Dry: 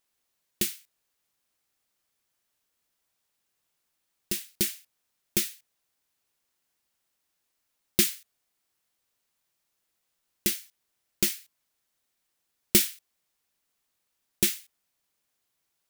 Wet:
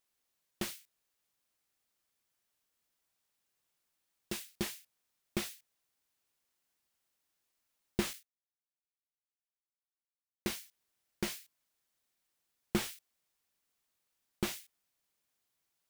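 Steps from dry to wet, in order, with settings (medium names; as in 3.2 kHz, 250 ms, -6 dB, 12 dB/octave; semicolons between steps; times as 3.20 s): 8.13–10.60 s: expander -43 dBFS; slew-rate limiter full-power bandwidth 130 Hz; trim -4 dB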